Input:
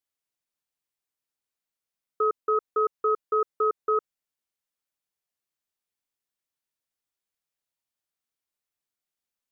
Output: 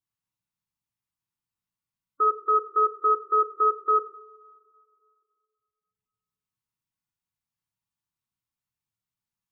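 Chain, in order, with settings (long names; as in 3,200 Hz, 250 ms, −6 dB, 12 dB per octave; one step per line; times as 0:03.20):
low-shelf EQ 240 Hz +11 dB
coupled-rooms reverb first 0.56 s, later 2.4 s, from −18 dB, DRR −1 dB
gate on every frequency bin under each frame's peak −20 dB strong
octave-band graphic EQ 125/250/500/1,000 Hz +10/+3/−11/+7 dB
expander for the loud parts 1.5 to 1, over −34 dBFS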